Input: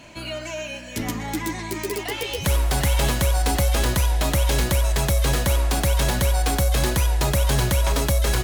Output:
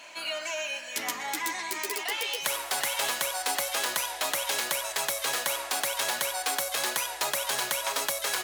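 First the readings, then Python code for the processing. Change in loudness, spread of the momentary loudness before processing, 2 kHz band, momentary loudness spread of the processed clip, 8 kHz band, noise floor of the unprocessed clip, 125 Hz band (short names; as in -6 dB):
-6.5 dB, 8 LU, -1.5 dB, 4 LU, -1.5 dB, -34 dBFS, -37.0 dB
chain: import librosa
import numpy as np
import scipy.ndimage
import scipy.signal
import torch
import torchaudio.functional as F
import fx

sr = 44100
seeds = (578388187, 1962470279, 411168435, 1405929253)

p1 = scipy.signal.sosfilt(scipy.signal.butter(2, 770.0, 'highpass', fs=sr, output='sos'), x)
p2 = fx.rider(p1, sr, range_db=5, speed_s=0.5)
p3 = p1 + F.gain(torch.from_numpy(p2), -3.0).numpy()
y = F.gain(torch.from_numpy(p3), -6.0).numpy()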